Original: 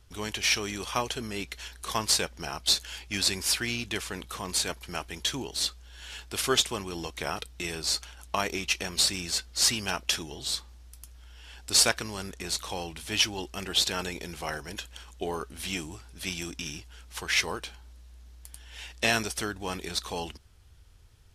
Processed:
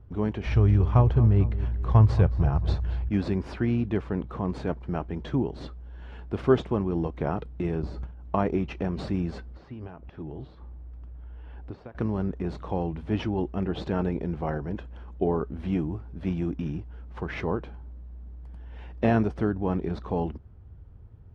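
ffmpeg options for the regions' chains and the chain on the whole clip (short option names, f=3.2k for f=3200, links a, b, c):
-filter_complex "[0:a]asettb=1/sr,asplit=3[a][b][c];[a]atrim=end=0.464[d];[b]atrim=start=0.46:end=3.09,asetpts=PTS-STARTPTS,afade=t=in:d=0.004:c=qsin,afade=t=out:st=2.626:d=0.004:c=qsin,lowshelf=f=150:t=q:w=1.5:g=13,asplit=2[e][f];[f]adelay=223,lowpass=f=3.9k:p=1,volume=-14.5dB,asplit=2[g][h];[h]adelay=223,lowpass=f=3.9k:p=1,volume=0.48,asplit=2[i][j];[j]adelay=223,lowpass=f=3.9k:p=1,volume=0.48,asplit=2[k][l];[l]adelay=223,lowpass=f=3.9k:p=1,volume=0.48[m];[e][g][i][k][m]amix=inputs=5:normalize=0,atrim=end_sample=115983[n];[c]atrim=start=3.086[o];[d][n]acrossfade=d=0.004:c1=hsin:c2=qsin[p];[p][o]acrossfade=d=0.004:c1=qsin:c2=hsin,asettb=1/sr,asplit=3[q][r][s];[q]atrim=end=7.824[t];[r]atrim=start=7.82:end=8.25,asetpts=PTS-STARTPTS,afade=t=in:d=0.004:c=qsin,afade=t=out:st=0.426:d=0.004:c=qsin,agate=range=-11dB:threshold=-45dB:ratio=16:release=100:detection=peak,lowshelf=f=440:g=9.5,acompressor=threshold=-30dB:ratio=5:attack=3.2:release=140:knee=1:detection=peak[u];[s]atrim=start=8.246[v];[t][u]acrossfade=d=0.004:c1=hsin:c2=qsin[w];[w][v]acrossfade=d=0.004:c1=qsin:c2=hsin,asettb=1/sr,asplit=3[x][y][z];[x]atrim=end=9.534[aa];[y]atrim=start=9.53:end=11.95,asetpts=PTS-STARTPTS,afade=t=in:d=0.004:c=qsin,afade=t=out:st=2.416:d=0.004:c=qsin,lowpass=3.9k,bandreject=f=200:w=5.9,acompressor=threshold=-41dB:ratio=12:attack=3.2:release=140:knee=1:detection=peak[ab];[z]atrim=start=11.946[ac];[aa][ab]acrossfade=d=0.004:c1=hsin:c2=qsin[ad];[ad][ac]acrossfade=d=0.004:c1=qsin:c2=hsin,lowpass=1k,equalizer=f=150:t=o:w=2.9:g=10.5,volume=2.5dB"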